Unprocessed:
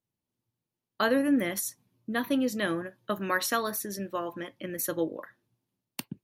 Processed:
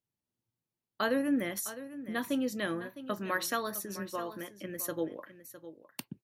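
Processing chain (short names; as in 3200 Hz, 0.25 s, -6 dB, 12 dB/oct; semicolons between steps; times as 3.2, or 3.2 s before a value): echo 0.658 s -14 dB; gain -4.5 dB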